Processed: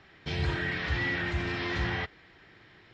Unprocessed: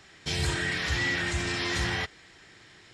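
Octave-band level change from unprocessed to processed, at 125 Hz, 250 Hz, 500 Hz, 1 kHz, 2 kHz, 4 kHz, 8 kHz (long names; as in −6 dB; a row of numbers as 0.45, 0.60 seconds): 0.0, −0.5, −0.5, −1.0, −2.5, −6.5, −19.0 decibels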